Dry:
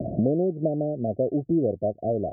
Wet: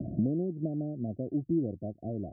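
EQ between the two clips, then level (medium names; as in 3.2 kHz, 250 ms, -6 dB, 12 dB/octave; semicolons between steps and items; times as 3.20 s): high-order bell 550 Hz -11.5 dB 1.1 oct; -4.5 dB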